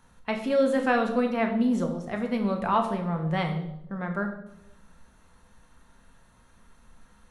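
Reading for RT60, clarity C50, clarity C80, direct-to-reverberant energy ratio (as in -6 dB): 0.85 s, 8.5 dB, 10.5 dB, 3.0 dB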